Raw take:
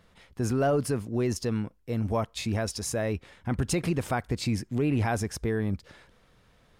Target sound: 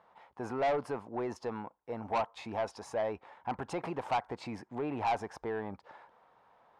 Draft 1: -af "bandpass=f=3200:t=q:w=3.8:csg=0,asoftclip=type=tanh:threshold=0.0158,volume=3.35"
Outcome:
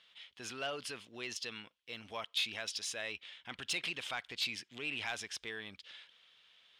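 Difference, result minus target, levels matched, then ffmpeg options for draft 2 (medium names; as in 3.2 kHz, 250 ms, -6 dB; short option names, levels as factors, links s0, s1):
4 kHz band +16.5 dB
-af "bandpass=f=870:t=q:w=3.8:csg=0,asoftclip=type=tanh:threshold=0.0158,volume=3.35"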